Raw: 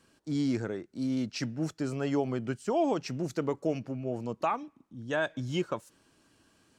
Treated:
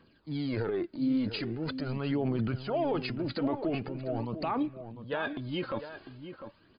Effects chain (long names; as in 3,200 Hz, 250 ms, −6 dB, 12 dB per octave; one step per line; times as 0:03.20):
transient designer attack −2 dB, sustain +11 dB
phase shifter 0.44 Hz, delay 3.9 ms, feedback 54%
brickwall limiter −21 dBFS, peak gain reduction 10 dB
slap from a distant wall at 120 metres, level −10 dB
level −1 dB
MP3 64 kbit/s 11,025 Hz